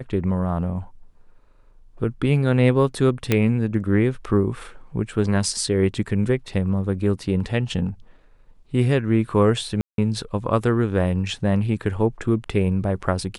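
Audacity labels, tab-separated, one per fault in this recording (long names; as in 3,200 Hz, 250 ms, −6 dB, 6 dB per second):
3.320000	3.320000	click −5 dBFS
9.810000	9.980000	drop-out 172 ms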